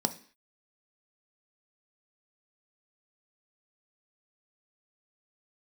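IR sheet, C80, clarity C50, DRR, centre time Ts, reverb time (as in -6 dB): 20.5 dB, 15.5 dB, 8.0 dB, 6 ms, 0.45 s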